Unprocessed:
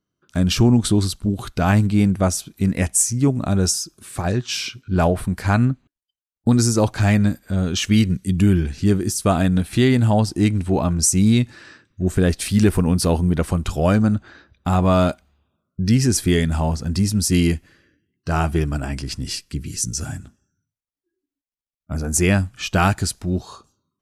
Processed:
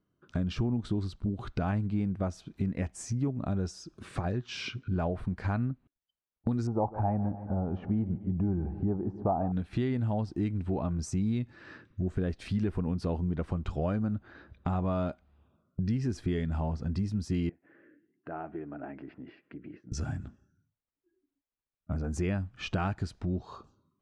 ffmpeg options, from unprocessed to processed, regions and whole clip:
-filter_complex "[0:a]asettb=1/sr,asplit=3[s0][s1][s2];[s0]atrim=end=6.674[s3];[s1]atrim=start=6.67:end=9.52,asetpts=PTS-STARTPTS,afade=t=in:d=0.004:c=qsin,afade=t=out:st=2.846:d=0.004:c=qsin,lowpass=f=820:t=q:w=6.7,aecho=1:1:147|294|441|588|735:0.141|0.0749|0.0397|0.021|0.0111,atrim=end_sample=125685[s4];[s2]atrim=start=9.516[s5];[s3][s4]acrossfade=d=0.004:c1=hsin:c2=qsin[s6];[s6][s5]acrossfade=d=0.004:c1=qsin:c2=hsin,asettb=1/sr,asplit=3[s7][s8][s9];[s7]atrim=end=17.494[s10];[s8]atrim=start=17.49:end=19.92,asetpts=PTS-STARTPTS,afade=t=in:d=0.004:c=qsin,afade=t=out:st=2.426:d=0.004:c=qsin,acompressor=threshold=0.0112:ratio=3:attack=3.2:release=140:knee=1:detection=peak,highpass=310,equalizer=f=310:t=q:w=4:g=6,equalizer=f=690:t=q:w=4:g=4,equalizer=f=1100:t=q:w=4:g=-5,lowpass=f=2100:w=0.5412,lowpass=f=2100:w=1.3066[s11];[s9]atrim=start=19.916[s12];[s10][s11]acrossfade=d=0.004:c1=hsin:c2=qsin[s13];[s13][s12]acrossfade=d=0.004:c1=qsin:c2=hsin,lowpass=4700,highshelf=f=2300:g=-11.5,acompressor=threshold=0.0158:ratio=3,volume=1.41"

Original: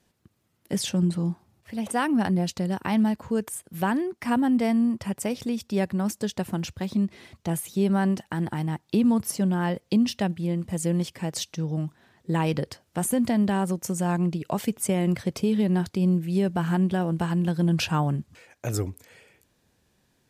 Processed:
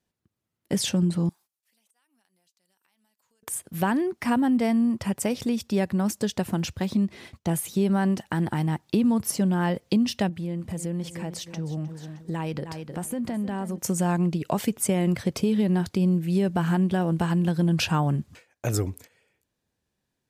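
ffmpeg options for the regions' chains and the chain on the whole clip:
-filter_complex "[0:a]asettb=1/sr,asplit=3[s0][s1][s2];[s0]atrim=end=1.294[s3];[s1]atrim=start=1.29:end=3.43,asetpts=PTS-STARTPTS,afade=t=in:d=0.004:c=qsin,afade=t=out:st=2.136:d=0.004:c=qsin,aderivative,acompressor=threshold=0.002:ratio=8:attack=3.2:release=140:knee=1:detection=peak[s4];[s2]atrim=start=3.426[s5];[s3][s4]acrossfade=d=0.004:c1=hsin:c2=qsin[s6];[s6][s5]acrossfade=d=0.004:c1=qsin:c2=hsin,asettb=1/sr,asplit=3[s7][s8][s9];[s7]atrim=end=10.294[s10];[s8]atrim=start=10.29:end=13.78,asetpts=PTS-STARTPTS,afade=t=in:d=0.004:c=qsin,afade=t=out:st=3.486:d=0.004:c=qsin,aecho=1:1:309|618|927:0.178|0.0658|0.0243,atrim=end_sample=153909,acompressor=threshold=0.02:ratio=2.5:attack=3.2:release=140:knee=1:detection=peak,adynamicequalizer=threshold=0.002:dfrequency=2600:dqfactor=0.7:tfrequency=2600:tqfactor=0.7:attack=5:release=100:ratio=0.375:range=2.5:mode=cutabove:tftype=highshelf[s11];[s9]atrim=start=13.776[s12];[s10][s11]acrossfade=d=0.004:c1=hsin:c2=qsin[s13];[s13][s12]acrossfade=d=0.004:c1=qsin:c2=hsin,agate=range=0.158:threshold=0.00398:ratio=16:detection=peak,acompressor=threshold=0.0562:ratio=2,volume=1.5"

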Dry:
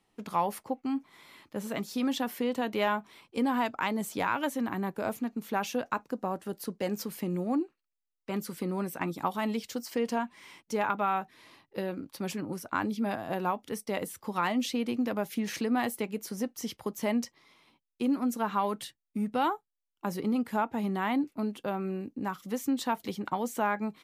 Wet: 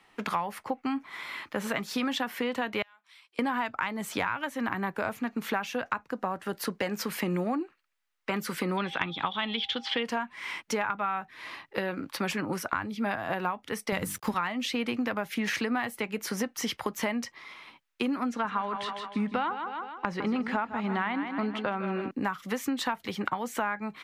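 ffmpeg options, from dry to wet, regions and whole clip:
-filter_complex "[0:a]asettb=1/sr,asplit=3[s0][s1][s2];[s0]atrim=end=2.824[s3];[s1]atrim=start=2.82:end=3.39,asetpts=PTS-STARTPTS,afade=t=in:d=0.004:c=qsin,afade=t=out:st=0.566:d=0.004:c=qsin,equalizer=f=6600:w=2.3:g=-11,acompressor=threshold=0.00224:ratio=2:attack=3.2:release=140:knee=1:detection=peak,bandpass=f=6600:t=q:w=1.8[s4];[s2]atrim=start=3.386[s5];[s3][s4]acrossfade=d=0.004:c1=hsin:c2=qsin[s6];[s6][s5]acrossfade=d=0.004:c1=qsin:c2=hsin,asettb=1/sr,asplit=3[s7][s8][s9];[s7]atrim=end=8.774[s10];[s8]atrim=start=8.77:end=10.03,asetpts=PTS-STARTPTS,afade=t=in:d=0.004:c=qsin,afade=t=out:st=1.256:d=0.004:c=qsin,lowpass=f=3400:t=q:w=15,aeval=exprs='val(0)+0.002*sin(2*PI*800*n/s)':c=same[s11];[s9]atrim=start=10.026[s12];[s10][s11]acrossfade=d=0.004:c1=hsin:c2=qsin[s13];[s13][s12]acrossfade=d=0.004:c1=qsin:c2=hsin,asettb=1/sr,asplit=3[s14][s15][s16];[s14]atrim=end=13.924[s17];[s15]atrim=start=13.92:end=14.34,asetpts=PTS-STARTPTS,afade=t=in:d=0.004:c=qsin,afade=t=out:st=0.416:d=0.004:c=qsin,bass=f=250:g=13,treble=f=4000:g=9,bandreject=f=50:t=h:w=6,bandreject=f=100:t=h:w=6,bandreject=f=150:t=h:w=6,bandreject=f=200:t=h:w=6,bandreject=f=250:t=h:w=6,bandreject=f=300:t=h:w=6,bandreject=f=350:t=h:w=6,aeval=exprs='sgn(val(0))*max(abs(val(0))-0.00251,0)':c=same[s18];[s16]atrim=start=14.336[s19];[s17][s18]acrossfade=d=0.004:c1=hsin:c2=qsin[s20];[s20][s19]acrossfade=d=0.004:c1=qsin:c2=hsin,asettb=1/sr,asplit=3[s21][s22][s23];[s21]atrim=end=18.294[s24];[s22]atrim=start=18.29:end=22.11,asetpts=PTS-STARTPTS,afade=t=in:d=0.004:c=qsin,afade=t=out:st=3.816:d=0.004:c=qsin,lowpass=5000,aecho=1:1:156|312|468|624:0.282|0.107|0.0407|0.0155,atrim=end_sample=168462[s25];[s23]atrim=start=22.106[s26];[s24][s25]acrossfade=d=0.004:c1=hsin:c2=qsin[s27];[s27][s26]acrossfade=d=0.004:c1=qsin:c2=hsin,equalizer=f=1700:t=o:w=2.5:g=14,acrossover=split=140[s28][s29];[s29]acompressor=threshold=0.0251:ratio=6[s30];[s28][s30]amix=inputs=2:normalize=0,volume=1.58"

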